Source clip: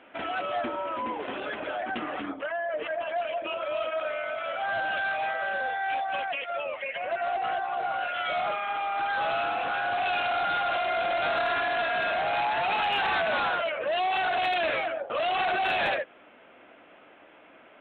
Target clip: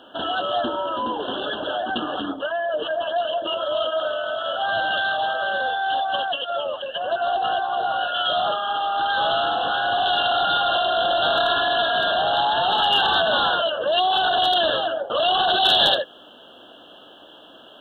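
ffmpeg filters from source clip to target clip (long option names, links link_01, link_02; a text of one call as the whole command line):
ffmpeg -i in.wav -af "asuperstop=centerf=2200:order=20:qfactor=2.1,asetnsamples=nb_out_samples=441:pad=0,asendcmd='15.5 highshelf g 13.5',highshelf=frequency=2600:width_type=q:width=1.5:gain=7,volume=7dB" out.wav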